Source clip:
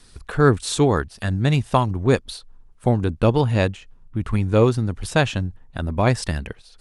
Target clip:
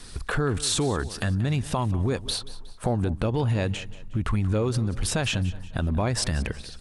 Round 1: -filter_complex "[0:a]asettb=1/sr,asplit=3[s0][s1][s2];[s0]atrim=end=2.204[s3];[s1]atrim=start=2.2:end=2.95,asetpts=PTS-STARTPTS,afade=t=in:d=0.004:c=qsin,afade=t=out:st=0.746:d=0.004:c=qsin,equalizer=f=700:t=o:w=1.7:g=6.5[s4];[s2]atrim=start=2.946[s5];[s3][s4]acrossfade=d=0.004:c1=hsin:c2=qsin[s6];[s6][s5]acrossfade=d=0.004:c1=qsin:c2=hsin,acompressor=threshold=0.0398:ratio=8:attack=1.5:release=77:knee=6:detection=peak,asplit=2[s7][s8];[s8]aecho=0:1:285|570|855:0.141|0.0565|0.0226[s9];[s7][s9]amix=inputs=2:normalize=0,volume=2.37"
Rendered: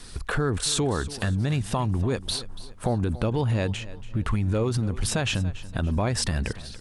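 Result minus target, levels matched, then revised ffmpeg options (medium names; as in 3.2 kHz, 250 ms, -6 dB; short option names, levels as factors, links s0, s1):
echo 103 ms late
-filter_complex "[0:a]asettb=1/sr,asplit=3[s0][s1][s2];[s0]atrim=end=2.204[s3];[s1]atrim=start=2.2:end=2.95,asetpts=PTS-STARTPTS,afade=t=in:d=0.004:c=qsin,afade=t=out:st=0.746:d=0.004:c=qsin,equalizer=f=700:t=o:w=1.7:g=6.5[s4];[s2]atrim=start=2.946[s5];[s3][s4]acrossfade=d=0.004:c1=hsin:c2=qsin[s6];[s6][s5]acrossfade=d=0.004:c1=qsin:c2=hsin,acompressor=threshold=0.0398:ratio=8:attack=1.5:release=77:knee=6:detection=peak,asplit=2[s7][s8];[s8]aecho=0:1:182|364|546:0.141|0.0565|0.0226[s9];[s7][s9]amix=inputs=2:normalize=0,volume=2.37"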